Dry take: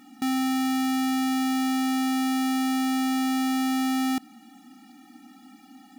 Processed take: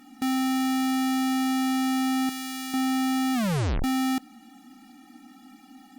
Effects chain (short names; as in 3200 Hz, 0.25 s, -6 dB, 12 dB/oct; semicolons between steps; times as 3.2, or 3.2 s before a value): 2.29–2.74 bell 440 Hz -14 dB 3 oct; 3.34 tape stop 0.50 s; Opus 48 kbps 48000 Hz